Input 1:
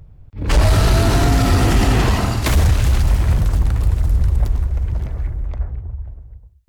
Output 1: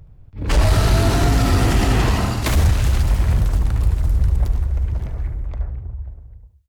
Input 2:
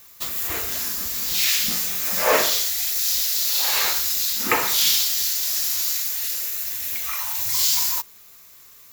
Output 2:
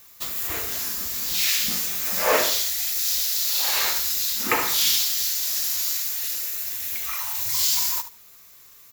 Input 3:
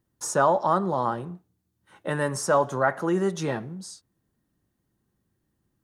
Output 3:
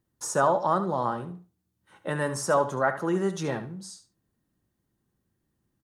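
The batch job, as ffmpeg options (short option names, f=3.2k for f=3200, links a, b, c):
-af "aecho=1:1:73|146:0.251|0.0402,volume=-2dB"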